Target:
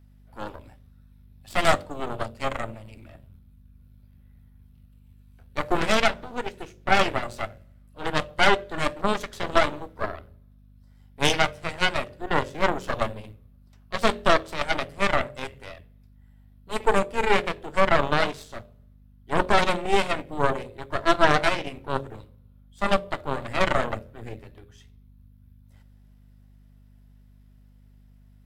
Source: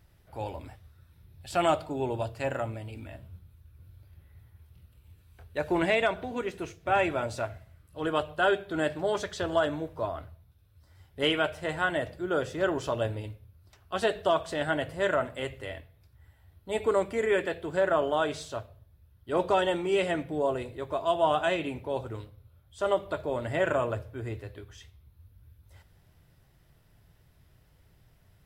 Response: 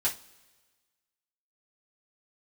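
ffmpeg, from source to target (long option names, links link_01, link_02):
-filter_complex "[0:a]aeval=exprs='0.237*(cos(1*acos(clip(val(0)/0.237,-1,1)))-cos(1*PI/2))+0.119*(cos(4*acos(clip(val(0)/0.237,-1,1)))-cos(4*PI/2))+0.0211*(cos(7*acos(clip(val(0)/0.237,-1,1)))-cos(7*PI/2))':channel_layout=same,bandreject=frequency=45.9:width_type=h:width=4,bandreject=frequency=91.8:width_type=h:width=4,bandreject=frequency=137.7:width_type=h:width=4,bandreject=frequency=183.6:width_type=h:width=4,bandreject=frequency=229.5:width_type=h:width=4,bandreject=frequency=275.4:width_type=h:width=4,bandreject=frequency=321.3:width_type=h:width=4,bandreject=frequency=367.2:width_type=h:width=4,bandreject=frequency=413.1:width_type=h:width=4,bandreject=frequency=459:width_type=h:width=4,bandreject=frequency=504.9:width_type=h:width=4,bandreject=frequency=550.8:width_type=h:width=4,bandreject=frequency=596.7:width_type=h:width=4,asplit=2[link_01][link_02];[1:a]atrim=start_sample=2205,highshelf=frequency=9200:gain=10.5[link_03];[link_02][link_03]afir=irnorm=-1:irlink=0,volume=-25.5dB[link_04];[link_01][link_04]amix=inputs=2:normalize=0,aeval=exprs='val(0)+0.00178*(sin(2*PI*50*n/s)+sin(2*PI*2*50*n/s)/2+sin(2*PI*3*50*n/s)/3+sin(2*PI*4*50*n/s)/4+sin(2*PI*5*50*n/s)/5)':channel_layout=same,volume=3dB"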